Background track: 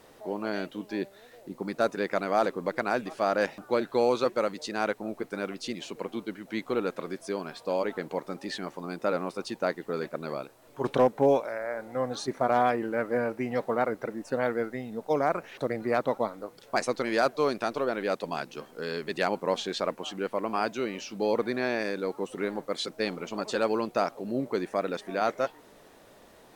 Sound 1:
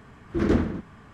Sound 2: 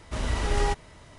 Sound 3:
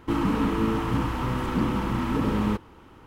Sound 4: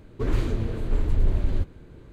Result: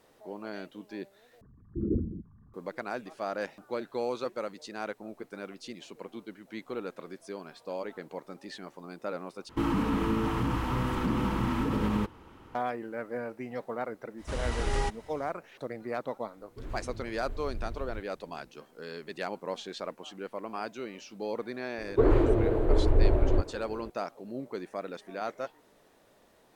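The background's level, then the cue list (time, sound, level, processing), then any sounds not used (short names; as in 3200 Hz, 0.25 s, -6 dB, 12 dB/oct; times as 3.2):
background track -8 dB
1.41 replace with 1 -7.5 dB + formant sharpening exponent 3
9.49 replace with 3 -2.5 dB + limiter -16.5 dBFS
14.16 add 2 -4.5 dB, fades 0.05 s
16.37 add 4 -16.5 dB
21.78 add 4 -1.5 dB + EQ curve 130 Hz 0 dB, 190 Hz -9 dB, 330 Hz +11 dB, 680 Hz +12 dB, 2700 Hz -3 dB, 5600 Hz -12 dB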